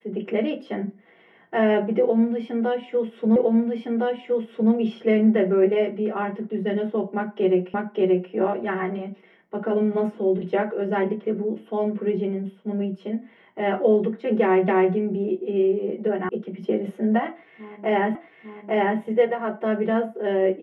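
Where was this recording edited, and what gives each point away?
0:03.36: the same again, the last 1.36 s
0:07.74: the same again, the last 0.58 s
0:14.68: the same again, the last 0.26 s
0:16.29: cut off before it has died away
0:18.15: the same again, the last 0.85 s

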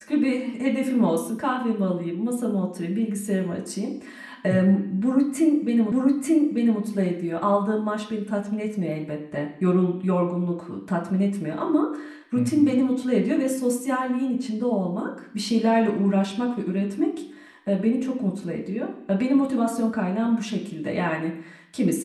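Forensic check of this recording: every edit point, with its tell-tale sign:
0:05.92: the same again, the last 0.89 s

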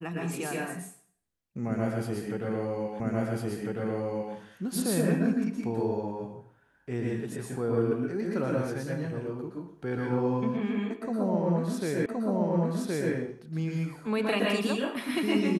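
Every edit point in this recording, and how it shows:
0:03.00: the same again, the last 1.35 s
0:12.06: the same again, the last 1.07 s

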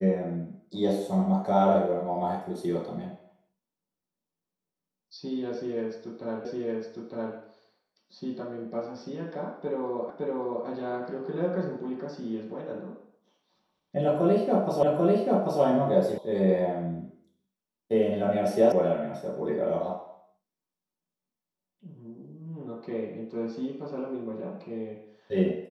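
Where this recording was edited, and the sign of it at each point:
0:06.45: the same again, the last 0.91 s
0:10.10: the same again, the last 0.56 s
0:14.83: the same again, the last 0.79 s
0:16.18: cut off before it has died away
0:18.72: cut off before it has died away

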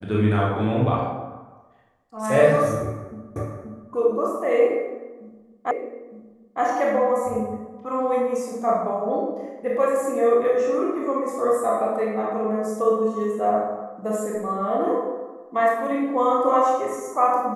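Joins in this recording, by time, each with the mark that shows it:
0:03.36: the same again, the last 0.53 s
0:05.71: the same again, the last 0.91 s

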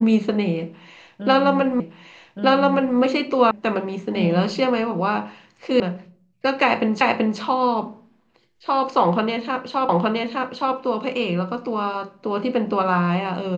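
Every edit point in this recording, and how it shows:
0:01.80: the same again, the last 1.17 s
0:03.51: cut off before it has died away
0:05.80: cut off before it has died away
0:07.01: the same again, the last 0.38 s
0:09.89: the same again, the last 0.87 s

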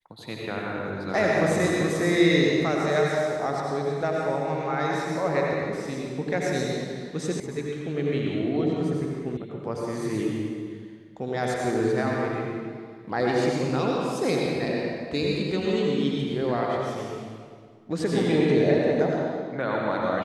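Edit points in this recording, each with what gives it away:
0:07.40: cut off before it has died away
0:09.37: cut off before it has died away

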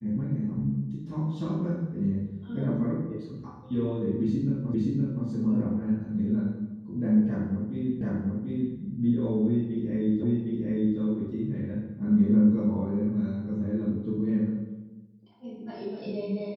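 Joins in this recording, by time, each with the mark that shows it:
0:04.74: the same again, the last 0.52 s
0:08.01: the same again, the last 0.74 s
0:10.23: the same again, the last 0.76 s

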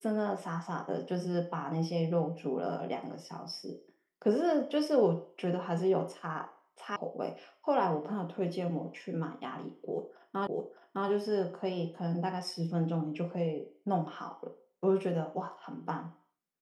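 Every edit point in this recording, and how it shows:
0:06.96: cut off before it has died away
0:10.47: the same again, the last 0.61 s

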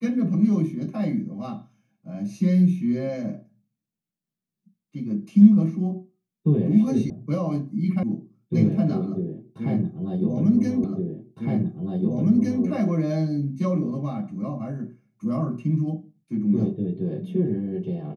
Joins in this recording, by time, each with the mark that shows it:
0:07.10: cut off before it has died away
0:08.03: cut off before it has died away
0:10.84: the same again, the last 1.81 s

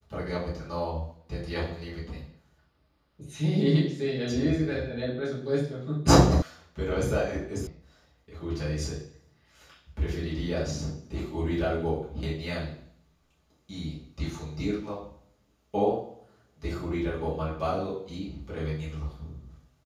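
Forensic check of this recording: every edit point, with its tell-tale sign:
0:06.42: cut off before it has died away
0:07.67: cut off before it has died away

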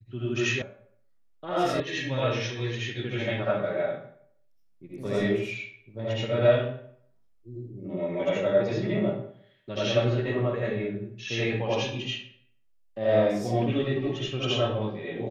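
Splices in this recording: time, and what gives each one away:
0:00.62: cut off before it has died away
0:01.80: cut off before it has died away

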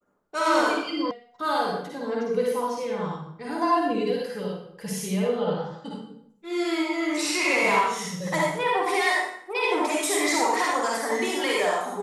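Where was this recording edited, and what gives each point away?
0:01.11: cut off before it has died away

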